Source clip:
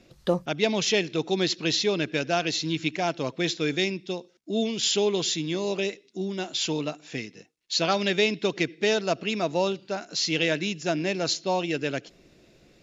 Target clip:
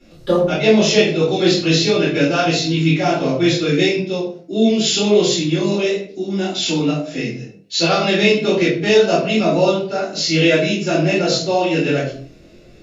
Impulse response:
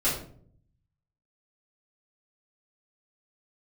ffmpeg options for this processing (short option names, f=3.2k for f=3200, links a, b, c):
-filter_complex "[1:a]atrim=start_sample=2205,afade=t=out:st=0.35:d=0.01,atrim=end_sample=15876[a];[0:a][a]afir=irnorm=-1:irlink=0,flanger=delay=22.5:depth=2.6:speed=1.5,volume=1dB"